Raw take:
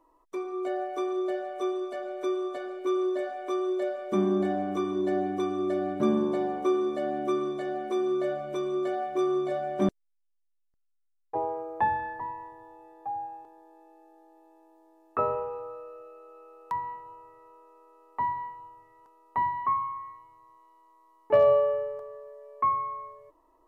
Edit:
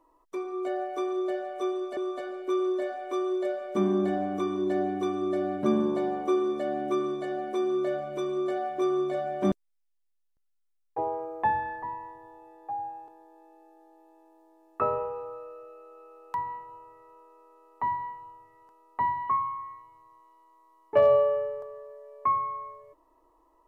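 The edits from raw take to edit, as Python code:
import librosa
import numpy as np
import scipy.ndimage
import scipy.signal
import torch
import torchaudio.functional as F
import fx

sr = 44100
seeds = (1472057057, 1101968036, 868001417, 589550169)

y = fx.edit(x, sr, fx.cut(start_s=1.97, length_s=0.37), tone=tone)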